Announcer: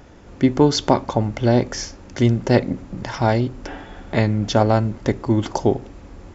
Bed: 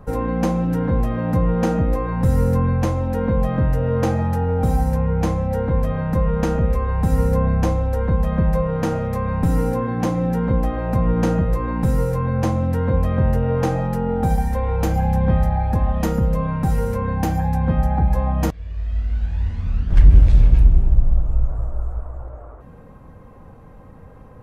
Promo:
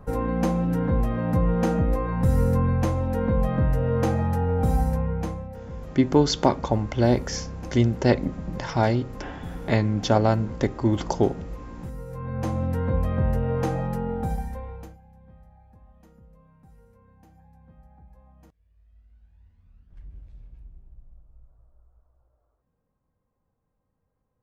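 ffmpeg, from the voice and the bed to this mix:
ffmpeg -i stem1.wav -i stem2.wav -filter_complex "[0:a]adelay=5550,volume=-3.5dB[link_01];[1:a]volume=9dB,afade=type=out:start_time=4.81:duration=0.74:silence=0.188365,afade=type=in:start_time=12.05:duration=0.57:silence=0.237137,afade=type=out:start_time=13.92:duration=1.06:silence=0.0375837[link_02];[link_01][link_02]amix=inputs=2:normalize=0" out.wav

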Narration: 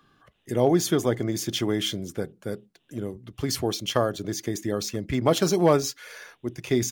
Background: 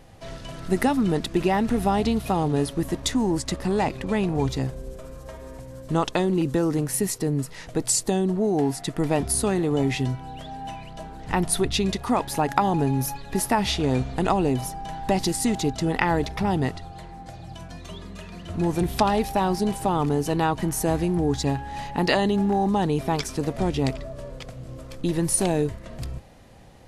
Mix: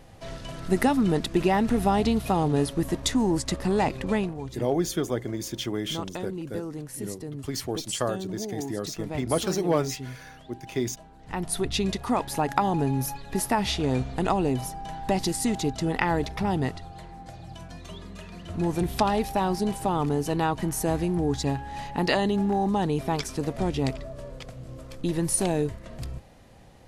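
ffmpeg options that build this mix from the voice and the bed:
ffmpeg -i stem1.wav -i stem2.wav -filter_complex "[0:a]adelay=4050,volume=-4.5dB[link_01];[1:a]volume=9dB,afade=type=out:start_time=4.14:duration=0.21:silence=0.266073,afade=type=in:start_time=11.18:duration=0.63:silence=0.334965[link_02];[link_01][link_02]amix=inputs=2:normalize=0" out.wav

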